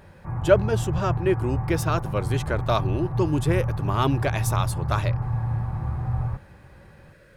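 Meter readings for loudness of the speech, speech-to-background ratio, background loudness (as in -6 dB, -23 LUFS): -26.0 LUFS, 2.0 dB, -28.0 LUFS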